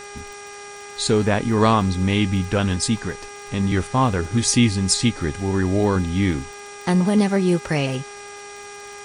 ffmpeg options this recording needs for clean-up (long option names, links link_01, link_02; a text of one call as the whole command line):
ffmpeg -i in.wav -af "adeclick=threshold=4,bandreject=frequency=407.2:width_type=h:width=4,bandreject=frequency=814.4:width_type=h:width=4,bandreject=frequency=1221.6:width_type=h:width=4,bandreject=frequency=1628.8:width_type=h:width=4,bandreject=frequency=2036:width_type=h:width=4,bandreject=frequency=2443.2:width_type=h:width=4,bandreject=frequency=5700:width=30,afwtdn=0.0089" out.wav